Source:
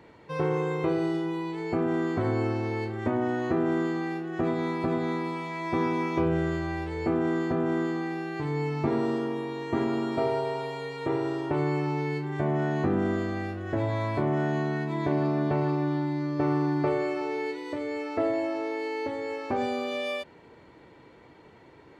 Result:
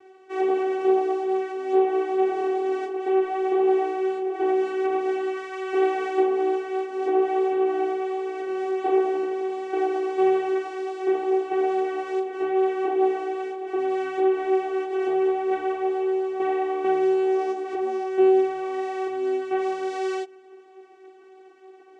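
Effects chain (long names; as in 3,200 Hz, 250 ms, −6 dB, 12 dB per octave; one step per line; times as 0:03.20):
channel vocoder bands 4, saw 379 Hz
multi-voice chorus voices 6, 0.47 Hz, delay 15 ms, depth 4.2 ms
level +7 dB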